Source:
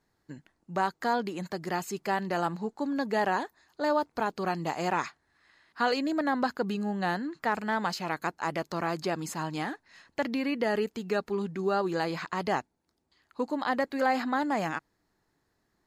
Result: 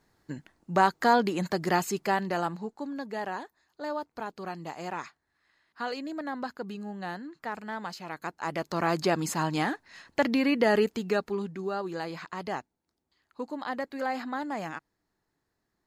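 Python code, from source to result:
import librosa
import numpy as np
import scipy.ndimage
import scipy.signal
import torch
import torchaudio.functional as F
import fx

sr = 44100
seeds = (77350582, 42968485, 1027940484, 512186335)

y = fx.gain(x, sr, db=fx.line((1.76, 6.0), (3.07, -7.0), (8.07, -7.0), (8.95, 5.0), (10.88, 5.0), (11.73, -5.0)))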